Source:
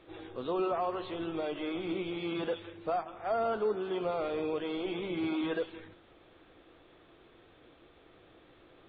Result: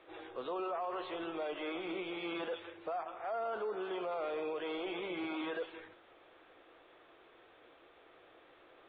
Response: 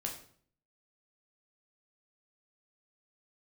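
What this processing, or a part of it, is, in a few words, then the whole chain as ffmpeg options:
DJ mixer with the lows and highs turned down: -filter_complex "[0:a]acrossover=split=400 3600:gain=0.158 1 0.224[a][b][c];[a][b][c]amix=inputs=3:normalize=0,alimiter=level_in=8.5dB:limit=-24dB:level=0:latency=1:release=20,volume=-8.5dB,volume=1.5dB"

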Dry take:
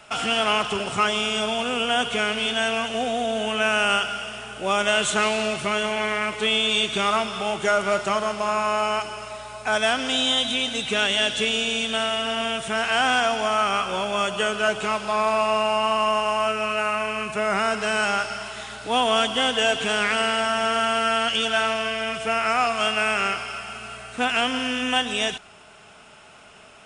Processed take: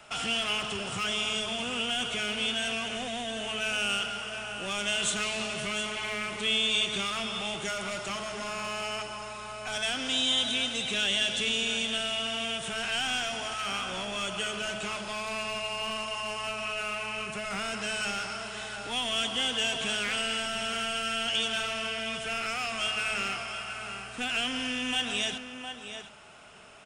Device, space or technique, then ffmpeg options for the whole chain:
one-band saturation: -filter_complex "[0:a]aecho=1:1:710:0.237,bandreject=f=215:t=h:w=4,bandreject=f=430:t=h:w=4,bandreject=f=645:t=h:w=4,bandreject=f=860:t=h:w=4,bandreject=f=1.075k:t=h:w=4,bandreject=f=1.29k:t=h:w=4,bandreject=f=1.505k:t=h:w=4,bandreject=f=1.72k:t=h:w=4,bandreject=f=1.935k:t=h:w=4,bandreject=f=2.15k:t=h:w=4,bandreject=f=2.365k:t=h:w=4,bandreject=f=2.58k:t=h:w=4,bandreject=f=2.795k:t=h:w=4,bandreject=f=3.01k:t=h:w=4,bandreject=f=3.225k:t=h:w=4,bandreject=f=3.44k:t=h:w=4,bandreject=f=3.655k:t=h:w=4,bandreject=f=3.87k:t=h:w=4,bandreject=f=4.085k:t=h:w=4,bandreject=f=4.3k:t=h:w=4,bandreject=f=4.515k:t=h:w=4,bandreject=f=4.73k:t=h:w=4,bandreject=f=4.945k:t=h:w=4,bandreject=f=5.16k:t=h:w=4,bandreject=f=5.375k:t=h:w=4,bandreject=f=5.59k:t=h:w=4,bandreject=f=5.805k:t=h:w=4,bandreject=f=6.02k:t=h:w=4,bandreject=f=6.235k:t=h:w=4,bandreject=f=6.45k:t=h:w=4,acrossover=split=200|2100[a][b][c];[b]asoftclip=type=tanh:threshold=-33dB[d];[a][d][c]amix=inputs=3:normalize=0,volume=-3.5dB"

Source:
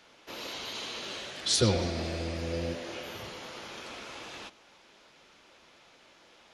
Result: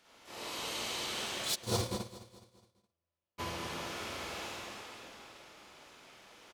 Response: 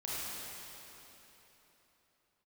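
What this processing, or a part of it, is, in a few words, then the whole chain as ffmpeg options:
shimmer-style reverb: -filter_complex "[0:a]asplit=2[a][b];[b]adelay=50,volume=-7.5dB[c];[a][c]amix=inputs=2:normalize=0,asplit=2[d][e];[e]asetrate=88200,aresample=44100,atempo=0.5,volume=-6dB[f];[d][f]amix=inputs=2:normalize=0[g];[1:a]atrim=start_sample=2205[h];[g][h]afir=irnorm=-1:irlink=0,asplit=3[i][j][k];[i]afade=t=out:st=1.54:d=0.02[l];[j]agate=range=-57dB:threshold=-19dB:ratio=16:detection=peak,afade=t=in:st=1.54:d=0.02,afade=t=out:st=3.38:d=0.02[m];[k]afade=t=in:st=3.38:d=0.02[n];[l][m][n]amix=inputs=3:normalize=0,aecho=1:1:209|418|627|836:0.168|0.0772|0.0355|0.0163,volume=-4dB"

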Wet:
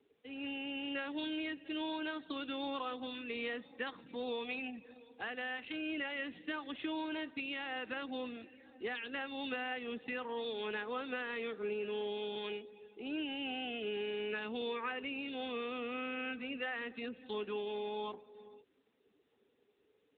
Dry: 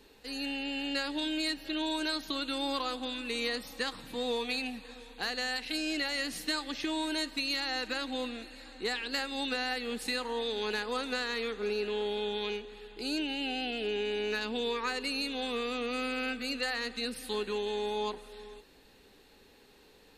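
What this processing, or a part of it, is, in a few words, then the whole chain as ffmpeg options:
mobile call with aggressive noise cancelling: -filter_complex "[0:a]asplit=3[a][b][c];[a]afade=t=out:st=0.79:d=0.02[d];[b]lowpass=11k,afade=t=in:st=0.79:d=0.02,afade=t=out:st=2.21:d=0.02[e];[c]afade=t=in:st=2.21:d=0.02[f];[d][e][f]amix=inputs=3:normalize=0,highpass=f=140:w=0.5412,highpass=f=140:w=1.3066,afftdn=nr=15:nf=-49,volume=-4.5dB" -ar 8000 -c:a libopencore_amrnb -b:a 10200

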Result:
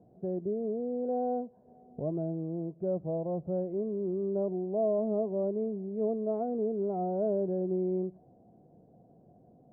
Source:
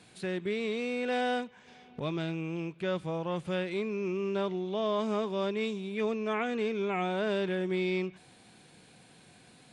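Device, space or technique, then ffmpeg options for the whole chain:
under water: -filter_complex "[0:a]asettb=1/sr,asplit=3[a][b][c];[a]atrim=end=0.454[d];[b]atrim=start=0.45:end=1.42,asetpts=PTS-STARTPTS,afade=t=in:d=0.004:c=qsin,afade=t=out:st=0.966:d=0.004:c=qsin,highshelf=f=2.3k:g=-8.5[e];[c]atrim=start=1.416[f];[d][e]acrossfade=d=0.004:c1=hsin:c2=qsin[g];[g][f]acrossfade=d=0.004:c1=qsin:c2=hsin,lowpass=f=590:w=0.5412,lowpass=f=590:w=1.3066,equalizer=f=680:t=o:w=0.38:g=11"

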